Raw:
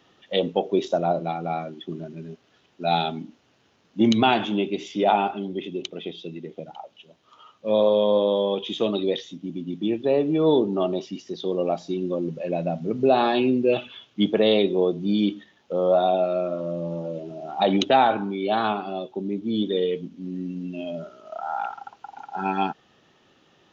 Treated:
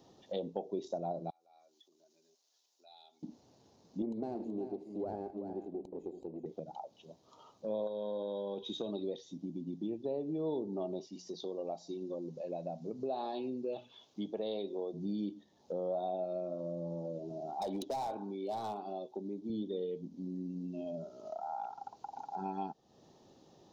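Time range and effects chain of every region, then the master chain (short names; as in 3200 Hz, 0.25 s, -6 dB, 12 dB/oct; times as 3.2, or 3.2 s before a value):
1.3–3.23 HPF 360 Hz + compressor 3:1, threshold -43 dBFS + differentiator
4.02–6.46 minimum comb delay 0.42 ms + band-pass 390 Hz, Q 1.3 + echo 0.377 s -12 dB
7.87–8.92 compressor 3:1, threshold -21 dBFS + small resonant body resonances 1500/3800 Hz, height 16 dB, ringing for 30 ms
11.07–14.94 low shelf 430 Hz -9 dB + notches 60/120/180 Hz
17.53–19.5 HPF 330 Hz 6 dB/oct + overloaded stage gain 19 dB
whole clip: band shelf 2000 Hz -15.5 dB; compressor 2.5:1, threshold -42 dBFS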